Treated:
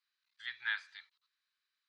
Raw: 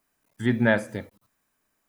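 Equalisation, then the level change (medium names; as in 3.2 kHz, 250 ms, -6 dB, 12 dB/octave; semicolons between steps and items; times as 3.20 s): inverse Chebyshev high-pass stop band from 620 Hz, stop band 40 dB; four-pole ladder low-pass 4.5 kHz, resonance 70%; +1.0 dB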